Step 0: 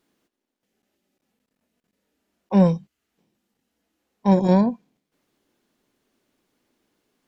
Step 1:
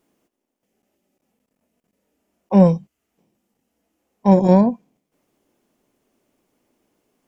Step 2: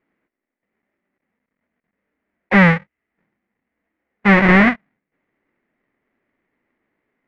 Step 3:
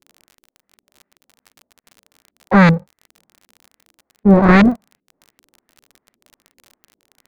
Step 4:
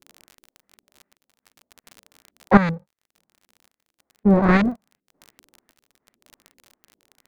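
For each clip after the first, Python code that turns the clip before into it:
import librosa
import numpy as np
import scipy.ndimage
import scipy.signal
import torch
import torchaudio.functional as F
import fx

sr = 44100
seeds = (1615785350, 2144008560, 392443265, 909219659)

y1 = fx.graphic_eq_15(x, sr, hz=(630, 1600, 4000), db=(3, -5, -8))
y1 = y1 * 10.0 ** (3.5 / 20.0)
y2 = fx.halfwave_hold(y1, sr)
y2 = fx.leveller(y2, sr, passes=2)
y2 = fx.lowpass_res(y2, sr, hz=2000.0, q=5.5)
y2 = y2 * 10.0 ** (-7.5 / 20.0)
y3 = fx.halfwave_hold(y2, sr)
y3 = fx.filter_lfo_lowpass(y3, sr, shape='saw_up', hz=2.6, low_hz=320.0, high_hz=2900.0, q=1.4)
y3 = fx.dmg_crackle(y3, sr, seeds[0], per_s=39.0, level_db=-27.0)
y3 = y3 * 10.0 ** (-3.5 / 20.0)
y4 = fx.tremolo_random(y3, sr, seeds[1], hz=3.5, depth_pct=90)
y4 = y4 * 10.0 ** (2.5 / 20.0)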